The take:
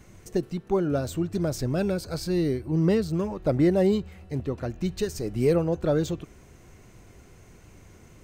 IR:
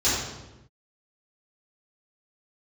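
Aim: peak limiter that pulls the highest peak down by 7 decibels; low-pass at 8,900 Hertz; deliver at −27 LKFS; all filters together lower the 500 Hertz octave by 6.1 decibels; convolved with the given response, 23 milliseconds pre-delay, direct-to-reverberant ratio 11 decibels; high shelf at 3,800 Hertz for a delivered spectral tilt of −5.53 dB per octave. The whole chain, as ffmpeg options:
-filter_complex "[0:a]lowpass=8900,equalizer=frequency=500:width_type=o:gain=-8.5,highshelf=frequency=3800:gain=8.5,alimiter=limit=-20.5dB:level=0:latency=1,asplit=2[link_01][link_02];[1:a]atrim=start_sample=2205,adelay=23[link_03];[link_02][link_03]afir=irnorm=-1:irlink=0,volume=-26dB[link_04];[link_01][link_04]amix=inputs=2:normalize=0,volume=3.5dB"

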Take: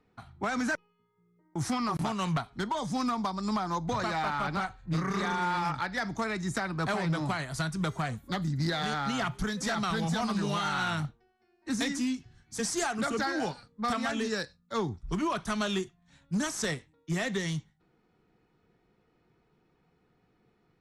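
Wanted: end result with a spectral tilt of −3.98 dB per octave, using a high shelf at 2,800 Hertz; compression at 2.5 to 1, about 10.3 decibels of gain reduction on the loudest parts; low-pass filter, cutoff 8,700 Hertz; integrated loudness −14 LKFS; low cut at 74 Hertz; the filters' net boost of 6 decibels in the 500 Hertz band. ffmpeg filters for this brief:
ffmpeg -i in.wav -af "highpass=74,lowpass=8700,equalizer=frequency=500:width_type=o:gain=7.5,highshelf=frequency=2800:gain=8,acompressor=threshold=-39dB:ratio=2.5,volume=24dB" out.wav

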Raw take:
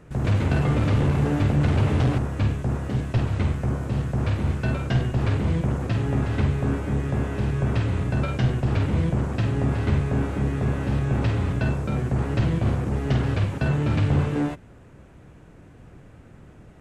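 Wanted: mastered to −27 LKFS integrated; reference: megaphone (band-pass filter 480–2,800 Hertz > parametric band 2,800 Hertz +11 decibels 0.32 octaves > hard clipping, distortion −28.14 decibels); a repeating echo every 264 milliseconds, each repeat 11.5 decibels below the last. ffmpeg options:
ffmpeg -i in.wav -af "highpass=480,lowpass=2800,equalizer=frequency=2800:width_type=o:width=0.32:gain=11,aecho=1:1:264|528|792:0.266|0.0718|0.0194,asoftclip=type=hard:threshold=-22dB,volume=6.5dB" out.wav

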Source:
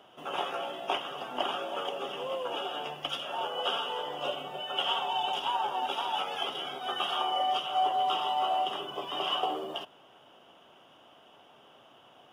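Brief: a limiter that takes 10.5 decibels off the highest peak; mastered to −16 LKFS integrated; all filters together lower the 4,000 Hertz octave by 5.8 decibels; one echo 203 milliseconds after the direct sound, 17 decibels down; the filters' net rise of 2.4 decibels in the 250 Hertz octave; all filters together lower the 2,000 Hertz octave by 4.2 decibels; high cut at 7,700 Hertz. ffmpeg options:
ffmpeg -i in.wav -af "lowpass=7700,equalizer=frequency=250:width_type=o:gain=3.5,equalizer=frequency=2000:width_type=o:gain=-3.5,equalizer=frequency=4000:width_type=o:gain=-7,alimiter=level_in=2dB:limit=-24dB:level=0:latency=1,volume=-2dB,aecho=1:1:203:0.141,volume=19.5dB" out.wav

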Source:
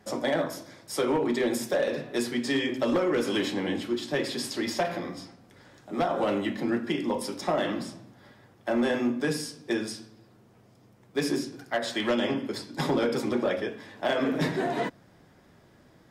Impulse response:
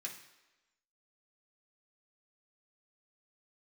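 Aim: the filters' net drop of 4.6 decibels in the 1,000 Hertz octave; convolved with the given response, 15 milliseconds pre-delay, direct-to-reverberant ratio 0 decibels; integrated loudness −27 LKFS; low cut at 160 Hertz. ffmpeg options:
-filter_complex "[0:a]highpass=160,equalizer=frequency=1000:width_type=o:gain=-7,asplit=2[link_01][link_02];[1:a]atrim=start_sample=2205,adelay=15[link_03];[link_02][link_03]afir=irnorm=-1:irlink=0,volume=2dB[link_04];[link_01][link_04]amix=inputs=2:normalize=0,volume=1dB"

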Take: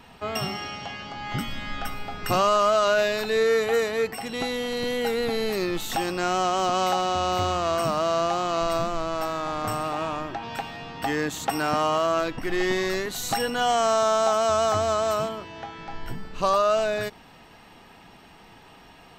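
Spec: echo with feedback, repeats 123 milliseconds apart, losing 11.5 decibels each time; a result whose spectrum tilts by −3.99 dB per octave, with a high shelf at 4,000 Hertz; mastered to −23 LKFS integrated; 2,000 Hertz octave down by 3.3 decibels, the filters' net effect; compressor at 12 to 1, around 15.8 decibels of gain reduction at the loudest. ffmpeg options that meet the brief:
ffmpeg -i in.wav -af "equalizer=frequency=2000:width_type=o:gain=-6,highshelf=frequency=4000:gain=6.5,acompressor=threshold=-34dB:ratio=12,aecho=1:1:123|246|369:0.266|0.0718|0.0194,volume=14.5dB" out.wav

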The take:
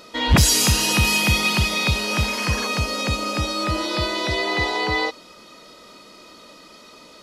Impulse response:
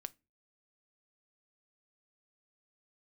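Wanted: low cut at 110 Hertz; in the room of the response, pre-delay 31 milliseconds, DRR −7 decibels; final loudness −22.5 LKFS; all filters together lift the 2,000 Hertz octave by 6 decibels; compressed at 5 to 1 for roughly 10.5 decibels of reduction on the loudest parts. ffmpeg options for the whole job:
-filter_complex "[0:a]highpass=110,equalizer=frequency=2000:width_type=o:gain=7.5,acompressor=threshold=-22dB:ratio=5,asplit=2[link_01][link_02];[1:a]atrim=start_sample=2205,adelay=31[link_03];[link_02][link_03]afir=irnorm=-1:irlink=0,volume=11dB[link_04];[link_01][link_04]amix=inputs=2:normalize=0,volume=-7.5dB"

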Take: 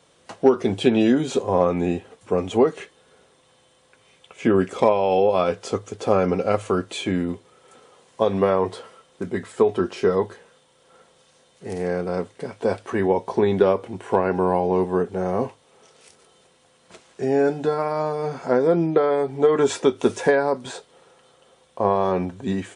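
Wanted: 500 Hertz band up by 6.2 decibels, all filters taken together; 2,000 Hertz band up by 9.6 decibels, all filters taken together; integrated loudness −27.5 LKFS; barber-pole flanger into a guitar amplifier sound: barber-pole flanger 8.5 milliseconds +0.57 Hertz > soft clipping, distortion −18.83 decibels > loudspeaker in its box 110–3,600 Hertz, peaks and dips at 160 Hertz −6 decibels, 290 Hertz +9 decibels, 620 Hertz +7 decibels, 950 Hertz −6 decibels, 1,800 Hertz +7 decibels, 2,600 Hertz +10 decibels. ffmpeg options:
ffmpeg -i in.wav -filter_complex "[0:a]equalizer=frequency=500:width_type=o:gain=4,equalizer=frequency=2000:width_type=o:gain=4.5,asplit=2[link_01][link_02];[link_02]adelay=8.5,afreqshift=0.57[link_03];[link_01][link_03]amix=inputs=2:normalize=1,asoftclip=threshold=-8.5dB,highpass=110,equalizer=frequency=160:width_type=q:width=4:gain=-6,equalizer=frequency=290:width_type=q:width=4:gain=9,equalizer=frequency=620:width_type=q:width=4:gain=7,equalizer=frequency=950:width_type=q:width=4:gain=-6,equalizer=frequency=1800:width_type=q:width=4:gain=7,equalizer=frequency=2600:width_type=q:width=4:gain=10,lowpass=frequency=3600:width=0.5412,lowpass=frequency=3600:width=1.3066,volume=-7dB" out.wav

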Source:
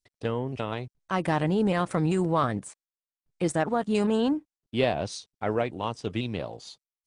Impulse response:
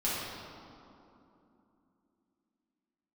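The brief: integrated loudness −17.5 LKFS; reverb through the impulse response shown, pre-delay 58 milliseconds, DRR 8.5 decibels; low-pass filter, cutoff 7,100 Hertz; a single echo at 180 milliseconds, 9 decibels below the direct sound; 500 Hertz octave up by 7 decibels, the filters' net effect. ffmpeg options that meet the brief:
-filter_complex "[0:a]lowpass=7100,equalizer=frequency=500:width_type=o:gain=8.5,aecho=1:1:180:0.355,asplit=2[link_01][link_02];[1:a]atrim=start_sample=2205,adelay=58[link_03];[link_02][link_03]afir=irnorm=-1:irlink=0,volume=-16.5dB[link_04];[link_01][link_04]amix=inputs=2:normalize=0,volume=5.5dB"

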